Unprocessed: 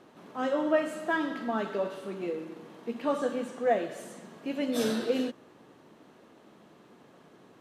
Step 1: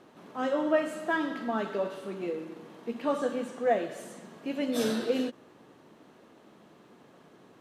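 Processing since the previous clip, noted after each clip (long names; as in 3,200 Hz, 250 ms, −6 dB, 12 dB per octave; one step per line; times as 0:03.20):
every ending faded ahead of time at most 560 dB per second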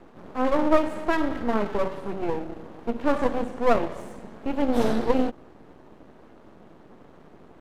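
tilt shelving filter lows +7 dB, about 1,500 Hz
half-wave rectification
level +4.5 dB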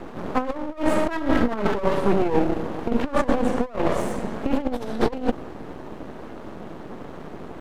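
compressor whose output falls as the input rises −28 dBFS, ratio −0.5
level +7.5 dB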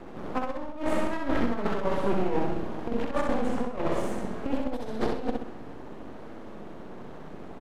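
on a send: repeating echo 64 ms, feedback 40%, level −3.5 dB
on the sum: highs frequency-modulated by the lows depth 0.24 ms
level −7.5 dB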